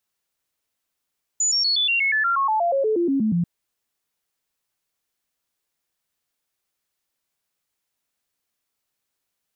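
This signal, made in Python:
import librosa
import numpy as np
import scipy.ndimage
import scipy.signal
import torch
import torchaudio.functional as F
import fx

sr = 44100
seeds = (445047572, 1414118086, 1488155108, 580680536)

y = fx.stepped_sweep(sr, from_hz=6950.0, direction='down', per_octave=3, tones=17, dwell_s=0.12, gap_s=0.0, level_db=-17.5)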